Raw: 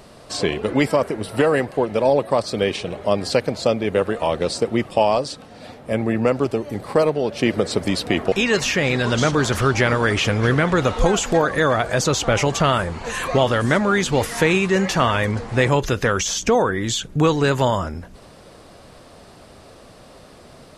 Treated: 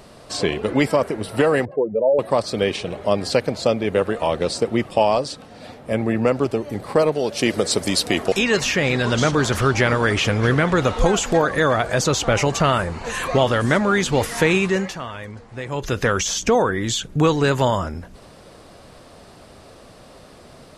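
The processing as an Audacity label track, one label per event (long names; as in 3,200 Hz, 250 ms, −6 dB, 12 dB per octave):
1.650000	2.190000	expanding power law on the bin magnitudes exponent 2.3
7.120000	8.390000	bass and treble bass −3 dB, treble +10 dB
12.330000	13.050000	notch filter 3,300 Hz
14.660000	16.000000	duck −13.5 dB, fades 0.32 s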